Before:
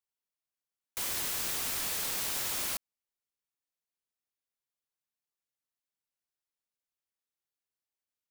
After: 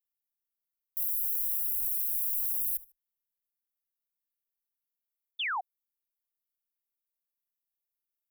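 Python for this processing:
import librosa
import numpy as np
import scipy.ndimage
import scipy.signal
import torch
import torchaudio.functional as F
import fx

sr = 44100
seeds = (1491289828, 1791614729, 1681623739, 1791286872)

y = scipy.signal.sosfilt(scipy.signal.cheby2(4, 70, [110.0, 3400.0], 'bandstop', fs=sr, output='sos'), x)
y = fx.echo_feedback(y, sr, ms=74, feedback_pct=25, wet_db=-20.0)
y = fx.spec_paint(y, sr, seeds[0], shape='fall', start_s=5.39, length_s=0.22, low_hz=690.0, high_hz=3700.0, level_db=-38.0)
y = y * librosa.db_to_amplitude(6.5)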